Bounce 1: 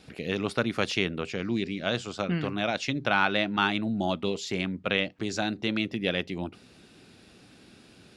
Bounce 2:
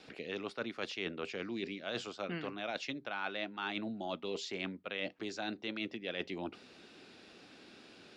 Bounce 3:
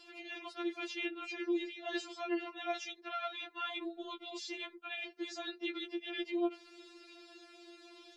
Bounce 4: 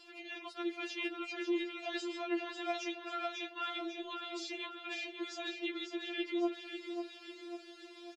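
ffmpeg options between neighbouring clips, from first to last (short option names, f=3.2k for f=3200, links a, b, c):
-filter_complex "[0:a]acrossover=split=250 6700:gain=0.2 1 0.141[a][b][c];[a][b][c]amix=inputs=3:normalize=0,areverse,acompressor=threshold=-36dB:ratio=6,areverse"
-af "afftfilt=real='re*4*eq(mod(b,16),0)':imag='im*4*eq(mod(b,16),0)':win_size=2048:overlap=0.75,volume=2.5dB"
-af "aecho=1:1:546|1092|1638|2184|2730|3276:0.447|0.232|0.121|0.0628|0.0327|0.017"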